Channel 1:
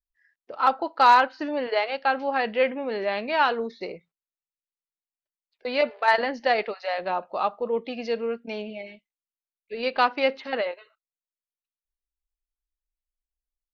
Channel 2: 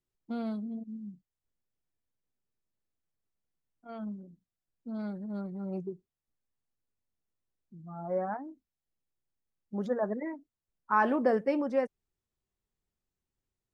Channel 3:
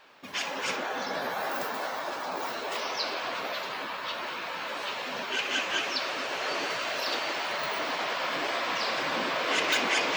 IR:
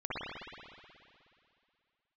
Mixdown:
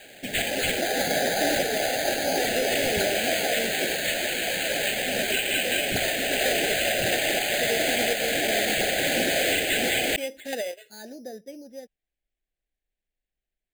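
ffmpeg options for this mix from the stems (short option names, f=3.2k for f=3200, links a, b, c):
-filter_complex "[0:a]volume=2dB[a];[1:a]volume=-12.5dB[b];[2:a]aeval=exprs='0.237*sin(PI/2*2*val(0)/0.237)':c=same,volume=1dB[c];[a][b]amix=inputs=2:normalize=0,acompressor=threshold=-26dB:ratio=6,volume=0dB[d];[c][d]amix=inputs=2:normalize=0,acrusher=samples=8:mix=1:aa=0.000001,asuperstop=centerf=1100:order=8:qfactor=1.4,alimiter=limit=-11.5dB:level=0:latency=1:release=436"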